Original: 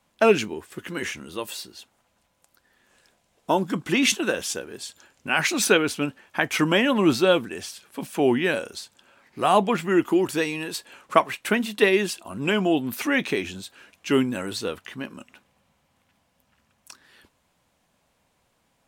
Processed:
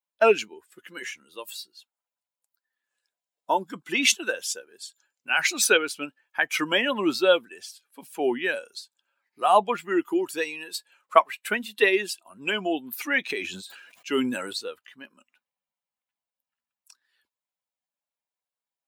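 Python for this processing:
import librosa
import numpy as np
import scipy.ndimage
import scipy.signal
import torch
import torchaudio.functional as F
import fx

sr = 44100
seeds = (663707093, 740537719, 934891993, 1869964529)

y = fx.bin_expand(x, sr, power=1.5)
y = scipy.signal.sosfilt(scipy.signal.butter(2, 440.0, 'highpass', fs=sr, output='sos'), y)
y = fx.sustainer(y, sr, db_per_s=45.0, at=(13.29, 14.52), fade=0.02)
y = y * librosa.db_to_amplitude(3.0)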